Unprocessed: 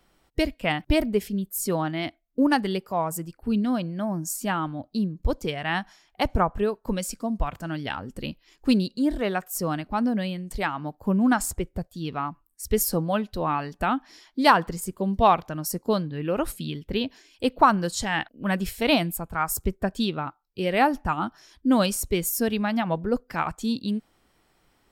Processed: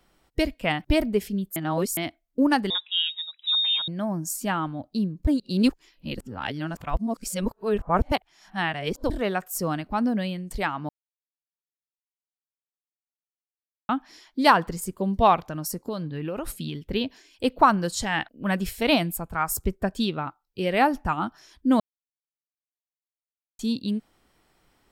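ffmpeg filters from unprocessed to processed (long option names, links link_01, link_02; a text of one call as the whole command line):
ffmpeg -i in.wav -filter_complex "[0:a]asettb=1/sr,asplit=3[link_01][link_02][link_03];[link_01]atrim=end=2.704[link_04];[link_02]atrim=start=2.7:end=3.88,asetpts=PTS-STARTPTS,afade=type=in:duration=0.004:curve=qsin,afade=type=out:start_time=1.176:duration=0.004:curve=qsin,lowpass=frequency=3300:width_type=q:width=0.5098,lowpass=frequency=3300:width_type=q:width=0.6013,lowpass=frequency=3300:width_type=q:width=0.9,lowpass=frequency=3300:width_type=q:width=2.563,afreqshift=-3900[link_05];[link_03]atrim=start=3.876[link_06];[link_04][link_05]acrossfade=duration=0.004:curve1=hsin:curve2=qsin[link_07];[link_07][link_06]acrossfade=duration=0.004:curve1=qsin:curve2=hsin,asettb=1/sr,asplit=3[link_08][link_09][link_10];[link_08]atrim=end=15.414[link_11];[link_09]atrim=start=15.41:end=16.83,asetpts=PTS-STARTPTS,afade=type=in:duration=0.004:curve=qsin,afade=type=out:start_time=1.416:duration=0.004:curve=qsin,acompressor=threshold=-26dB:ratio=6:attack=3.2:release=140:knee=1:detection=peak[link_12];[link_10]atrim=start=16.826[link_13];[link_11][link_12]acrossfade=duration=0.004:curve1=hsin:curve2=qsin[link_14];[link_14][link_13]acrossfade=duration=0.004:curve1=qsin:curve2=hsin,asplit=9[link_15][link_16][link_17][link_18][link_19][link_20][link_21][link_22][link_23];[link_15]atrim=end=1.562[link_24];[link_16]atrim=start=1.558:end=1.972,asetpts=PTS-STARTPTS,areverse[link_25];[link_17]atrim=start=1.968:end=5.272[link_26];[link_18]atrim=start=5.268:end=9.102,asetpts=PTS-STARTPTS,areverse[link_27];[link_19]atrim=start=9.098:end=10.89,asetpts=PTS-STARTPTS,afade=type=out:start_time=1.788:duration=0.004:curve=hsin[link_28];[link_20]atrim=start=10.89:end=13.89,asetpts=PTS-STARTPTS,volume=0[link_29];[link_21]atrim=start=13.89:end=21.8,asetpts=PTS-STARTPTS,afade=type=in:duration=0.004:curve=hsin,afade=type=out:start_time=7.906:duration=0.004:curve=hsin[link_30];[link_22]atrim=start=21.8:end=23.59,asetpts=PTS-STARTPTS,volume=0[link_31];[link_23]atrim=start=23.59,asetpts=PTS-STARTPTS,afade=type=in:duration=0.004:curve=hsin[link_32];[link_24][link_25]acrossfade=duration=0.004:curve1=hsin:curve2=hsin[link_33];[link_33][link_26]acrossfade=duration=0.004:curve1=hsin:curve2=hsin[link_34];[link_34][link_27]acrossfade=duration=0.004:curve1=hsin:curve2=hsin[link_35];[link_28][link_29][link_30][link_31][link_32]concat=n=5:v=0:a=1[link_36];[link_35][link_36]acrossfade=duration=0.004:curve1=hsin:curve2=hsin" out.wav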